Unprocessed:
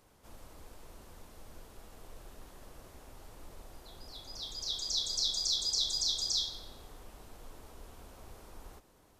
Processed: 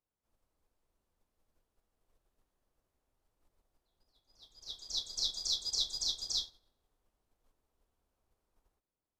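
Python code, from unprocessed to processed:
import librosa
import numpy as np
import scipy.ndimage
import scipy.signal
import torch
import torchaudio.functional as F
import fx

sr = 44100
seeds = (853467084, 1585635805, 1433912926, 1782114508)

y = fx.upward_expand(x, sr, threshold_db=-49.0, expansion=2.5)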